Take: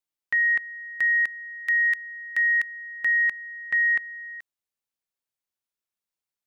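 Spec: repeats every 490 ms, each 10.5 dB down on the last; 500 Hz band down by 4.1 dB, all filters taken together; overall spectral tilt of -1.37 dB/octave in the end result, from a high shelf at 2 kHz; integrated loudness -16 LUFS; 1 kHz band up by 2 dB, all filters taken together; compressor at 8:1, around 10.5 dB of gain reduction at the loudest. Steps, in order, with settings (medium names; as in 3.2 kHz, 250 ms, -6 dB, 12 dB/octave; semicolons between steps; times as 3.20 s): peaking EQ 500 Hz -7 dB; peaking EQ 1 kHz +6.5 dB; treble shelf 2 kHz -7.5 dB; compression 8:1, threshold -33 dBFS; feedback delay 490 ms, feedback 30%, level -10.5 dB; trim +18.5 dB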